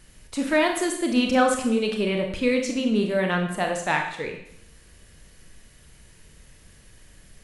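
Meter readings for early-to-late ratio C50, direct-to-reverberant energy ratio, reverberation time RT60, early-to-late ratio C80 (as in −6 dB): 6.0 dB, 2.5 dB, 0.75 s, 9.0 dB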